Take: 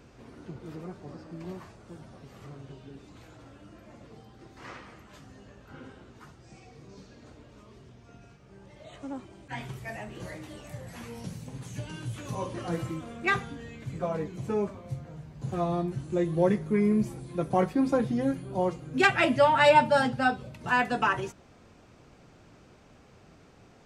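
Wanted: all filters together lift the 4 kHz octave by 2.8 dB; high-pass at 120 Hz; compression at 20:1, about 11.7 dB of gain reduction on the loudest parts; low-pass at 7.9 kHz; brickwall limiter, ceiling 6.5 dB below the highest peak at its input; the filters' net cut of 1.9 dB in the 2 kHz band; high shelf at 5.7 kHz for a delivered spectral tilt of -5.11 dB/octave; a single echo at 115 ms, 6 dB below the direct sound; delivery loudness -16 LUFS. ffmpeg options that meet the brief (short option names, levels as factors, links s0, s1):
-af "highpass=120,lowpass=7900,equalizer=f=2000:t=o:g=-3.5,equalizer=f=4000:t=o:g=7.5,highshelf=f=5700:g=-6,acompressor=threshold=0.0501:ratio=20,alimiter=limit=0.0708:level=0:latency=1,aecho=1:1:115:0.501,volume=8.91"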